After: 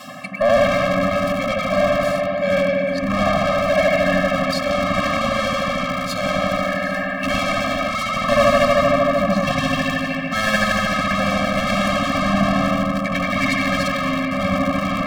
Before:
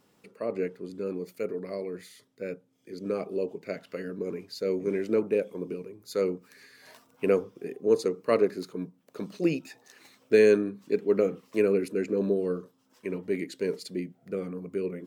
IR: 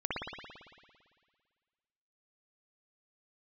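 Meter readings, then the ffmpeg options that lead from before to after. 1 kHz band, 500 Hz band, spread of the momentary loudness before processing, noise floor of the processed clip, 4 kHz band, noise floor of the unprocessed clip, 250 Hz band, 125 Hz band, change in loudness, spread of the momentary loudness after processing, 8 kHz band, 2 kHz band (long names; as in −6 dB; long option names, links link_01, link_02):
+24.5 dB, +7.5 dB, 14 LU, −24 dBFS, +21.0 dB, −66 dBFS, +10.5 dB, +15.5 dB, +10.5 dB, 5 LU, can't be measured, +20.5 dB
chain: -filter_complex "[1:a]atrim=start_sample=2205,asetrate=32634,aresample=44100[link_01];[0:a][link_01]afir=irnorm=-1:irlink=0,adynamicequalizer=threshold=0.0158:dfrequency=150:dqfactor=1.7:tfrequency=150:tqfactor=1.7:attack=5:release=100:ratio=0.375:range=2:mode=cutabove:tftype=bell,asplit=2[link_02][link_03];[link_03]aeval=exprs='val(0)*gte(abs(val(0)),0.075)':channel_layout=same,volume=-10.5dB[link_04];[link_02][link_04]amix=inputs=2:normalize=0,asplit=2[link_05][link_06];[link_06]highpass=frequency=720:poles=1,volume=37dB,asoftclip=type=tanh:threshold=-0.5dB[link_07];[link_05][link_07]amix=inputs=2:normalize=0,lowpass=frequency=3500:poles=1,volume=-6dB,areverse,acompressor=mode=upward:threshold=-11dB:ratio=2.5,areverse,afftfilt=real='re*eq(mod(floor(b*sr/1024/260),2),0)':imag='im*eq(mod(floor(b*sr/1024/260),2),0)':win_size=1024:overlap=0.75,volume=-4dB"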